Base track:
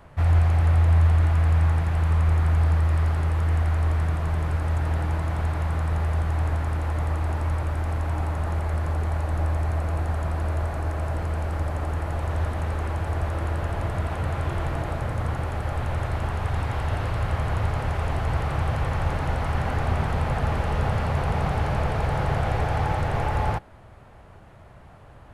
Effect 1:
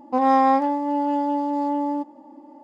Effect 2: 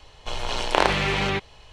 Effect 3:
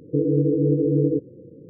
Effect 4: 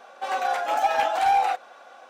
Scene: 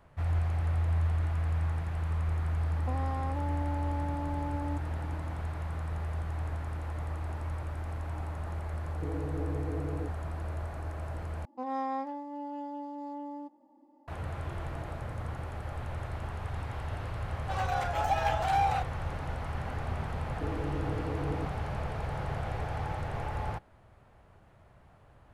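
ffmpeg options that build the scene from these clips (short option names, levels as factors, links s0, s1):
-filter_complex "[1:a]asplit=2[s0][s1];[3:a]asplit=2[s2][s3];[0:a]volume=0.299[s4];[s0]acompressor=threshold=0.0355:ratio=6:attack=3.2:release=140:knee=1:detection=peak[s5];[s2]acompressor=threshold=0.0891:ratio=6:attack=3.2:release=140:knee=1:detection=peak[s6];[s4]asplit=2[s7][s8];[s7]atrim=end=11.454[s9];[s1]atrim=end=2.63,asetpts=PTS-STARTPTS,volume=0.15[s10];[s8]atrim=start=14.076[s11];[s5]atrim=end=2.63,asetpts=PTS-STARTPTS,volume=0.562,afade=t=in:d=0.004:c=hsin,afade=t=out:st=2.626:d=0.004:c=hsin,adelay=2750[s12];[s6]atrim=end=1.69,asetpts=PTS-STARTPTS,volume=0.237,afade=t=in:d=0.004:c=hsin,afade=t=out:st=1.686:d=0.004:c=hsin,adelay=8890[s13];[4:a]atrim=end=2.09,asetpts=PTS-STARTPTS,volume=0.447,afade=t=in:d=0.004:c=hsin,afade=t=out:st=2.086:d=0.004:c=hsin,adelay=17270[s14];[s3]atrim=end=1.69,asetpts=PTS-STARTPTS,volume=0.133,afade=t=in:d=0.004:c=hsin,afade=t=out:st=1.686:d=0.004:c=hsin,adelay=20270[s15];[s9][s10]acrossfade=d=0.004:c1=hsin:c2=hsin[s16];[s16][s11]acrossfade=d=0.004:c1=hsin:c2=hsin[s17];[s17][s12][s13][s14][s15]amix=inputs=5:normalize=0"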